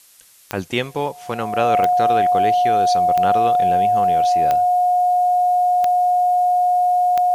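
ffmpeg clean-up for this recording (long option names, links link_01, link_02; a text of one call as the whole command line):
ffmpeg -i in.wav -af "adeclick=threshold=4,bandreject=frequency=720:width=30,agate=range=-21dB:threshold=-29dB" out.wav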